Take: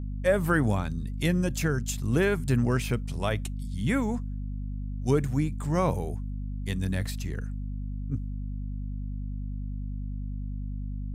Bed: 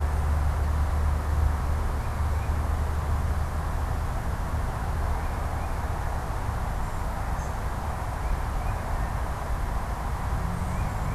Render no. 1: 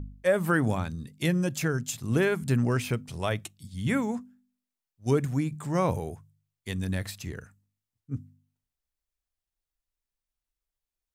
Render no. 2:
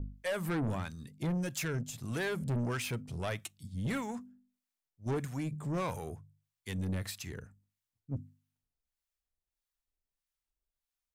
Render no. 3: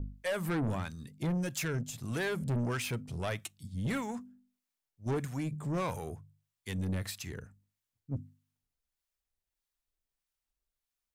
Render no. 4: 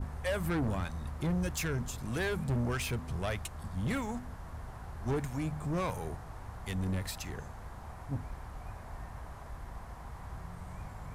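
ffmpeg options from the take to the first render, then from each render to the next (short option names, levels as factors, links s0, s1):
-af "bandreject=f=50:t=h:w=4,bandreject=f=100:t=h:w=4,bandreject=f=150:t=h:w=4,bandreject=f=200:t=h:w=4,bandreject=f=250:t=h:w=4"
-filter_complex "[0:a]acrossover=split=750[s0][s1];[s0]aeval=exprs='val(0)*(1-0.7/2+0.7/2*cos(2*PI*1.6*n/s))':c=same[s2];[s1]aeval=exprs='val(0)*(1-0.7/2-0.7/2*cos(2*PI*1.6*n/s))':c=same[s3];[s2][s3]amix=inputs=2:normalize=0,asoftclip=type=tanh:threshold=0.0355"
-af "volume=1.12"
-filter_complex "[1:a]volume=0.168[s0];[0:a][s0]amix=inputs=2:normalize=0"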